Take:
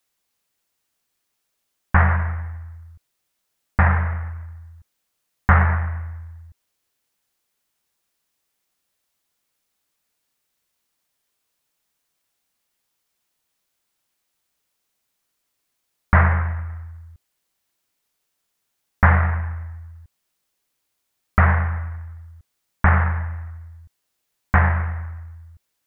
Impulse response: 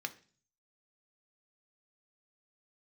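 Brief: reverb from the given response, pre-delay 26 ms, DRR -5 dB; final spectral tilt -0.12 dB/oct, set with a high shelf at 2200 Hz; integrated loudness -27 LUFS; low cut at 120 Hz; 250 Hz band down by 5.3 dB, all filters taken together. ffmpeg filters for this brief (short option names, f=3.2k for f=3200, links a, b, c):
-filter_complex "[0:a]highpass=120,equalizer=f=250:t=o:g=-8,highshelf=f=2.2k:g=6.5,asplit=2[a][b];[1:a]atrim=start_sample=2205,adelay=26[c];[b][c]afir=irnorm=-1:irlink=0,volume=4dB[d];[a][d]amix=inputs=2:normalize=0,volume=-10.5dB"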